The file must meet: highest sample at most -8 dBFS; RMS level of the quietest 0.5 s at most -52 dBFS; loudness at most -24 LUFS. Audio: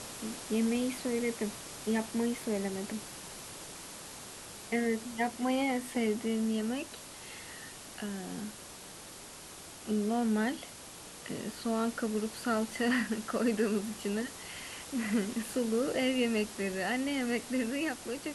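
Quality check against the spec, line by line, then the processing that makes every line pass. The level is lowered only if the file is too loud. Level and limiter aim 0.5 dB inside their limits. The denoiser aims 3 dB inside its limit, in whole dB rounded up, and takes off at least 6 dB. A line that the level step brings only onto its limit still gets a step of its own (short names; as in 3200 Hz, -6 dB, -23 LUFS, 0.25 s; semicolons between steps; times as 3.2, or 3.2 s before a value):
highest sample -18.5 dBFS: OK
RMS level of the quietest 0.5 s -48 dBFS: fail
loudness -33.5 LUFS: OK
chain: denoiser 7 dB, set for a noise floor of -48 dBFS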